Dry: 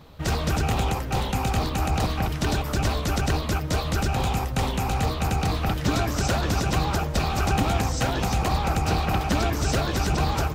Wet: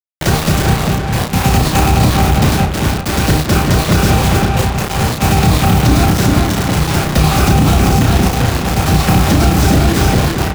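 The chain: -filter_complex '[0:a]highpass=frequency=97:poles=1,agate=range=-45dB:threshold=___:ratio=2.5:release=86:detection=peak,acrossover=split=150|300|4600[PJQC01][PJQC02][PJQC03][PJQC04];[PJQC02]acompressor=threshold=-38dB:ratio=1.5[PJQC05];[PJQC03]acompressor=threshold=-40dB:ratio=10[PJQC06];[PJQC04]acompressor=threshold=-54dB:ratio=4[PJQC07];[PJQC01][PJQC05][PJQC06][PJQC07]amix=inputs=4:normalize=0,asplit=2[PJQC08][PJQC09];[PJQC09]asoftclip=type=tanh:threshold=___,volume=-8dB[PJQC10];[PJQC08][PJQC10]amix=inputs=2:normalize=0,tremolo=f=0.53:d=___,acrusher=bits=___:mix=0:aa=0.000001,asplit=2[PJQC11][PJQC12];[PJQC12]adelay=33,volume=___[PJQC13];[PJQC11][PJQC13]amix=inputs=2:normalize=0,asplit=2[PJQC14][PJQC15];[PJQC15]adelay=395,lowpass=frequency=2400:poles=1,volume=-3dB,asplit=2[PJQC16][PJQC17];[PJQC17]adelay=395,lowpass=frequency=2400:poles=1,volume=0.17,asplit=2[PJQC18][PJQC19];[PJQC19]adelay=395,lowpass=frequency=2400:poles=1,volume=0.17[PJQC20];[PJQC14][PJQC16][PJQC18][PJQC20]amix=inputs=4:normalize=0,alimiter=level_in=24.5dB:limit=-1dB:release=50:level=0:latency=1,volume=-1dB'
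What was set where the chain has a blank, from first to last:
-19dB, -29dB, 0.77, 6, -3.5dB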